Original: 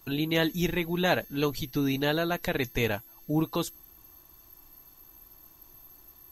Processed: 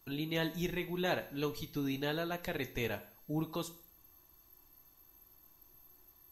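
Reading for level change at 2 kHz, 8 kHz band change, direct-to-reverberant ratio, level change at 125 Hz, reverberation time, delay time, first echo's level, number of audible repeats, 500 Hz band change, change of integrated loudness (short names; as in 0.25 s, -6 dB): -8.5 dB, -8.5 dB, 10.0 dB, -8.5 dB, 0.50 s, none, none, none, -8.0 dB, -8.5 dB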